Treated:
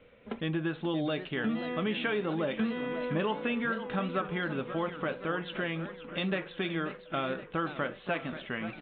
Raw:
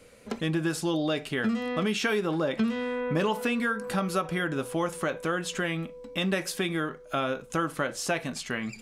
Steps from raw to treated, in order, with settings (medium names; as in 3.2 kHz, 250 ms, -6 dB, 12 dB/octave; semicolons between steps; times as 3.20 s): resampled via 8 kHz; modulated delay 528 ms, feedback 57%, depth 211 cents, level -12 dB; trim -4 dB